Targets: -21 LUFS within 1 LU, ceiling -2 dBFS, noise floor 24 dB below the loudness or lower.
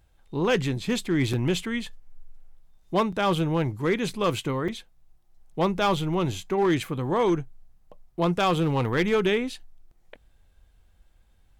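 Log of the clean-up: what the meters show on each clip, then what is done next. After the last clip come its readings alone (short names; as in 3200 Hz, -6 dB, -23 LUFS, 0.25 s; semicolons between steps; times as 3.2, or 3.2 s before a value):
clipped 1.0%; flat tops at -16.5 dBFS; dropouts 3; longest dropout 5.1 ms; loudness -25.5 LUFS; peak -16.5 dBFS; loudness target -21.0 LUFS
-> clip repair -16.5 dBFS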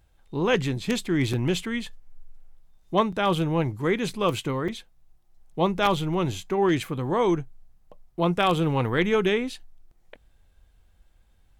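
clipped 0.0%; dropouts 3; longest dropout 5.1 ms
-> interpolate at 1.33/3.12/4.68, 5.1 ms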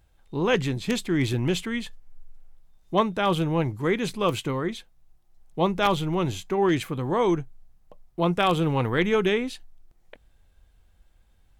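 dropouts 0; loudness -25.0 LUFS; peak -7.5 dBFS; loudness target -21.0 LUFS
-> gain +4 dB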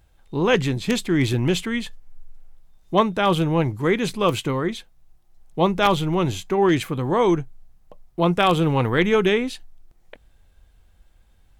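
loudness -21.0 LUFS; peak -3.5 dBFS; noise floor -57 dBFS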